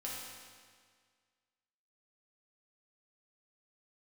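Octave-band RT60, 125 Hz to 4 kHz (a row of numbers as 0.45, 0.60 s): 1.8, 1.8, 1.8, 1.8, 1.8, 1.7 s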